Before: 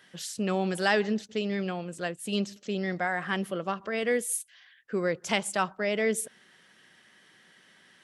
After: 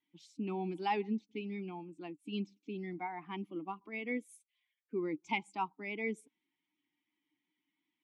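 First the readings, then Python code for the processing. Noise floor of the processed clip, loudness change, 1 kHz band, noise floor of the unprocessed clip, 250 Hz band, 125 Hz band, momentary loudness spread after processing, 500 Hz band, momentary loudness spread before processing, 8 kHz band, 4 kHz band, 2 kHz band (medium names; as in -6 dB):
under -85 dBFS, -9.5 dB, -6.0 dB, -60 dBFS, -7.5 dB, -10.0 dB, 9 LU, -12.0 dB, 8 LU, -27.5 dB, -14.0 dB, -12.0 dB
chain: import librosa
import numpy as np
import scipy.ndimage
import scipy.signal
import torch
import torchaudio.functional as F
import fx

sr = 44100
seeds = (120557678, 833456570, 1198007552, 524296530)

y = fx.bin_expand(x, sr, power=1.5)
y = fx.vowel_filter(y, sr, vowel='u')
y = fx.vibrato(y, sr, rate_hz=2.7, depth_cents=28.0)
y = y * 10.0 ** (9.0 / 20.0)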